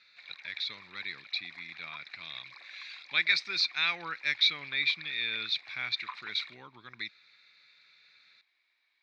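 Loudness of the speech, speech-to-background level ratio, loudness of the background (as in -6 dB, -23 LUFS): -31.0 LUFS, 17.0 dB, -48.0 LUFS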